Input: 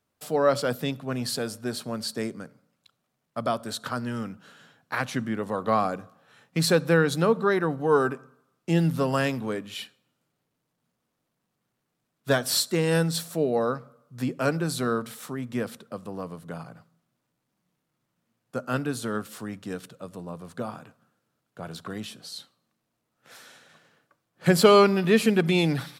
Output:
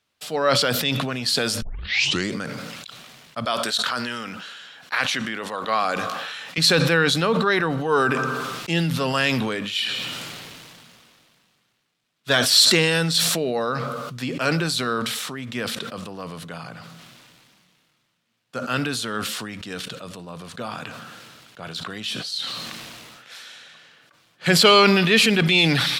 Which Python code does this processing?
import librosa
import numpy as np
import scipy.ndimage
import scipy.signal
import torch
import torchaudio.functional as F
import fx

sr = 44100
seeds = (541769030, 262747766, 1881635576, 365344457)

y = fx.highpass(x, sr, hz=450.0, slope=6, at=(3.45, 6.58))
y = fx.edit(y, sr, fx.tape_start(start_s=1.62, length_s=0.71), tone=tone)
y = fx.peak_eq(y, sr, hz=3300.0, db=14.5, octaves=2.4)
y = fx.sustainer(y, sr, db_per_s=24.0)
y = y * librosa.db_to_amplitude(-2.5)